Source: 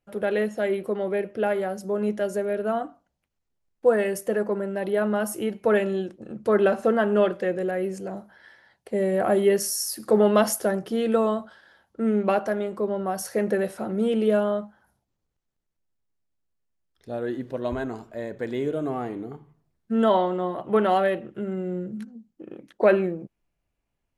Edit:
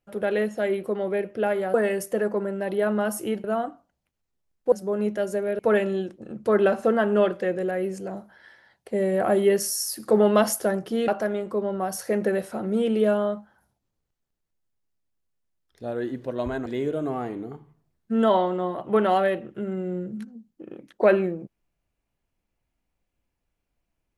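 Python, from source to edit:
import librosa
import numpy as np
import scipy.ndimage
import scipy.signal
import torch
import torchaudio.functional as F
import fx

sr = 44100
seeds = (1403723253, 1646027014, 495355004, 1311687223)

y = fx.edit(x, sr, fx.swap(start_s=1.74, length_s=0.87, other_s=3.89, other_length_s=1.7),
    fx.cut(start_s=11.08, length_s=1.26),
    fx.cut(start_s=17.92, length_s=0.54), tone=tone)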